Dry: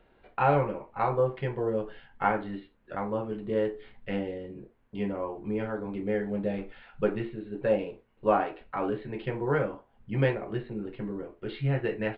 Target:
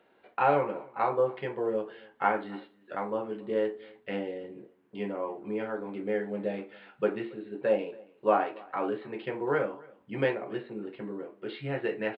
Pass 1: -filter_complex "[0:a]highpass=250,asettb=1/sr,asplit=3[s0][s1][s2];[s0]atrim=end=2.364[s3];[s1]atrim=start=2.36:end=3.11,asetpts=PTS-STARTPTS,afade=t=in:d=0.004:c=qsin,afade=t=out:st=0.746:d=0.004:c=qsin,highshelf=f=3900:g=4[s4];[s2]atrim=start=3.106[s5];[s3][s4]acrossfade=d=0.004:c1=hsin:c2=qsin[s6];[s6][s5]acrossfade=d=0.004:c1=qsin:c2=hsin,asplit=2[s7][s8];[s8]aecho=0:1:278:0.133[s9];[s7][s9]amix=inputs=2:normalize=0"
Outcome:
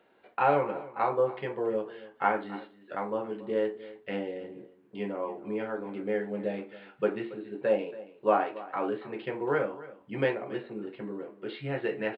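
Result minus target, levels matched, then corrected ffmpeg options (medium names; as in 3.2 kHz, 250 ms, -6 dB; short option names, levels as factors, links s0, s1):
echo-to-direct +6.5 dB
-filter_complex "[0:a]highpass=250,asettb=1/sr,asplit=3[s0][s1][s2];[s0]atrim=end=2.364[s3];[s1]atrim=start=2.36:end=3.11,asetpts=PTS-STARTPTS,afade=t=in:d=0.004:c=qsin,afade=t=out:st=0.746:d=0.004:c=qsin,highshelf=f=3900:g=4[s4];[s2]atrim=start=3.106[s5];[s3][s4]acrossfade=d=0.004:c1=hsin:c2=qsin[s6];[s6][s5]acrossfade=d=0.004:c1=qsin:c2=hsin,asplit=2[s7][s8];[s8]aecho=0:1:278:0.0631[s9];[s7][s9]amix=inputs=2:normalize=0"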